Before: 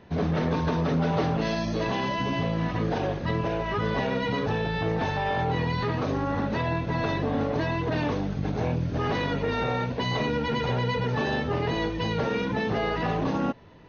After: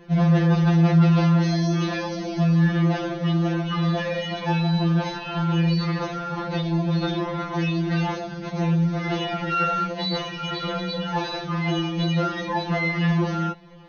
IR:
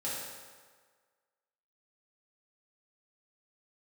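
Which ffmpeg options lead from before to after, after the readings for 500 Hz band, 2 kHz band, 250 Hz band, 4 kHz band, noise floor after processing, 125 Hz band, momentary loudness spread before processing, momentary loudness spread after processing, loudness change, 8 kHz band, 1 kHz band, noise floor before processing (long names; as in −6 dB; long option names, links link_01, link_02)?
−1.5 dB, +1.5 dB, +6.0 dB, +4.5 dB, −34 dBFS, +7.0 dB, 2 LU, 9 LU, +4.0 dB, can't be measured, +1.0 dB, −31 dBFS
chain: -af "afftfilt=real='re*2.83*eq(mod(b,8),0)':imag='im*2.83*eq(mod(b,8),0)':win_size=2048:overlap=0.75,volume=6.5dB"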